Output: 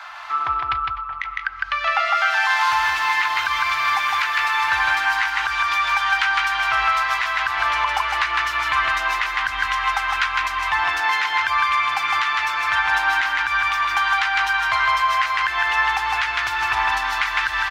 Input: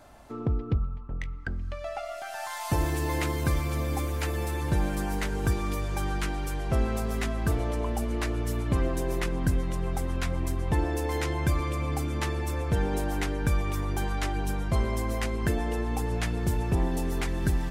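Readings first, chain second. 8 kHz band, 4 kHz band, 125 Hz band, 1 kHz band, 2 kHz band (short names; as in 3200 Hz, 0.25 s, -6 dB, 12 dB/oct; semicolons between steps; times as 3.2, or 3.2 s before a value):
+3.0 dB, +16.5 dB, under -15 dB, +17.0 dB, +20.5 dB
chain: inverse Chebyshev high-pass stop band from 530 Hz, stop band 40 dB; high shelf 12000 Hz +7.5 dB; compressor, threshold -40 dBFS, peak gain reduction 10.5 dB; air absorption 250 m; echo 0.157 s -3.5 dB; maximiser +34 dB; gain -7.5 dB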